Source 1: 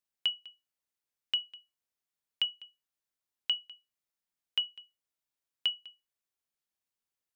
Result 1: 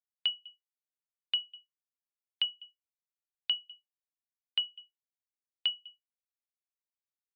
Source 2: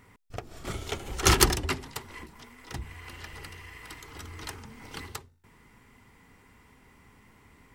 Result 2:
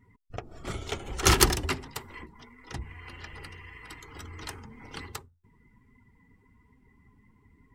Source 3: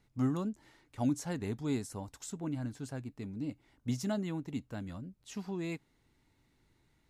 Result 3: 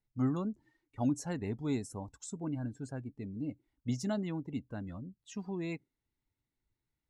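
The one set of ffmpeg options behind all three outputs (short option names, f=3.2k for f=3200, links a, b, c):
-af "afftdn=nr=19:nf=-52"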